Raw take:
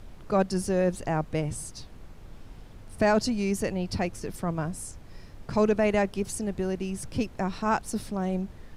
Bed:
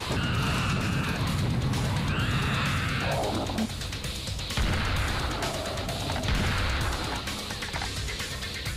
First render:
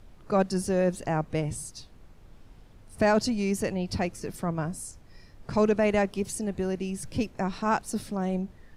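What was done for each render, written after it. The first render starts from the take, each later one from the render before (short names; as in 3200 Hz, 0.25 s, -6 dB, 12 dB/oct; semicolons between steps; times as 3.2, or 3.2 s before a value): noise print and reduce 6 dB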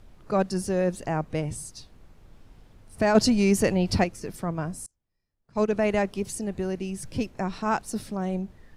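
3.15–4.04 gain +6.5 dB; 4.86–5.73 upward expander 2.5:1, over -40 dBFS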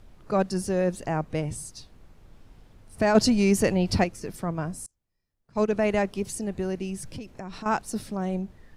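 7.01–7.66 compressor 12:1, threshold -33 dBFS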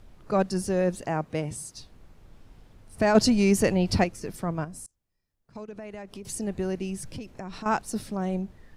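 1.01–1.75 HPF 130 Hz 6 dB/oct; 4.64–6.25 compressor, threshold -37 dBFS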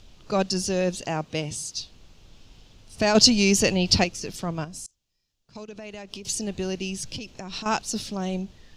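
band shelf 4300 Hz +12.5 dB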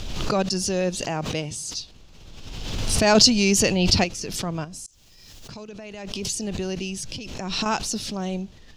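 backwards sustainer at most 32 dB/s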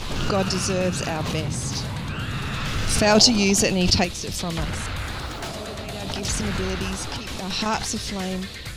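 add bed -2 dB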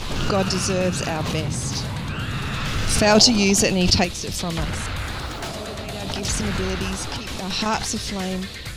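gain +1.5 dB; limiter -1 dBFS, peak gain reduction 1 dB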